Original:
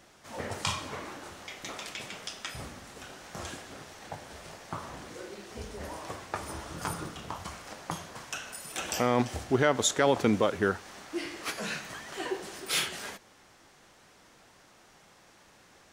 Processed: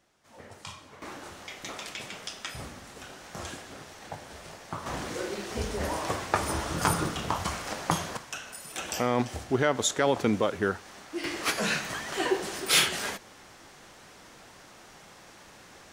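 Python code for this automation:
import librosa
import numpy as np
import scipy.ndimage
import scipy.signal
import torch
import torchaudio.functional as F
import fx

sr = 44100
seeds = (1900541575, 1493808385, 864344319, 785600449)

y = fx.gain(x, sr, db=fx.steps((0.0, -11.5), (1.02, 1.0), (4.86, 9.0), (8.17, -0.5), (11.24, 7.0)))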